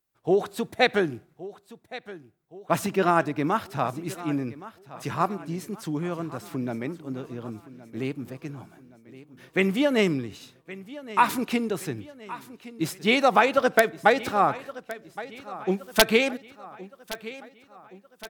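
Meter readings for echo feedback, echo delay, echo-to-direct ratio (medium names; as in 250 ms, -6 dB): 49%, 1119 ms, -16.0 dB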